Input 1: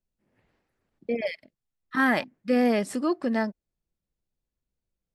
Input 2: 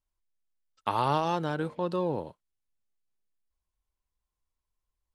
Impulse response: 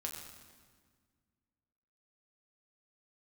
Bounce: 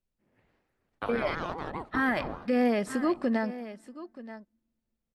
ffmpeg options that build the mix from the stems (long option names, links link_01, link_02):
-filter_complex "[0:a]volume=0dB,asplit=4[link_01][link_02][link_03][link_04];[link_02]volume=-21dB[link_05];[link_03]volume=-17dB[link_06];[1:a]agate=range=-33dB:threshold=-57dB:ratio=3:detection=peak,aeval=exprs='val(0)*sin(2*PI*420*n/s+420*0.6/4.9*sin(2*PI*4.9*n/s))':channel_layout=same,adelay=150,volume=-2.5dB,asplit=3[link_07][link_08][link_09];[link_08]volume=-20.5dB[link_10];[link_09]volume=-18dB[link_11];[link_04]apad=whole_len=233479[link_12];[link_07][link_12]sidechaincompress=threshold=-25dB:ratio=8:attack=16:release=107[link_13];[2:a]atrim=start_sample=2205[link_14];[link_05][link_10]amix=inputs=2:normalize=0[link_15];[link_15][link_14]afir=irnorm=-1:irlink=0[link_16];[link_06][link_11]amix=inputs=2:normalize=0,aecho=0:1:929:1[link_17];[link_01][link_13][link_16][link_17]amix=inputs=4:normalize=0,bass=frequency=250:gain=-1,treble=frequency=4000:gain=-5,alimiter=limit=-18.5dB:level=0:latency=1:release=92"